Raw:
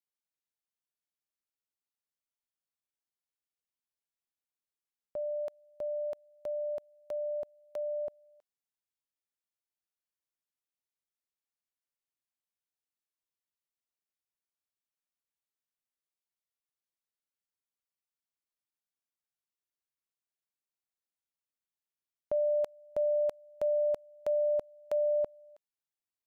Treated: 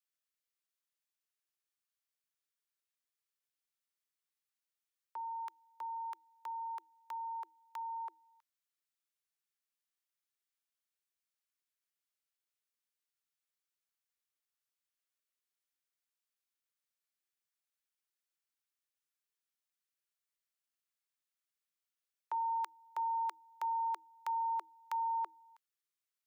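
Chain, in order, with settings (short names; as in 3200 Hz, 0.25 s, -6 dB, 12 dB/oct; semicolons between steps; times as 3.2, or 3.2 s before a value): frequency shift +320 Hz; band shelf 580 Hz -9 dB; gain +1.5 dB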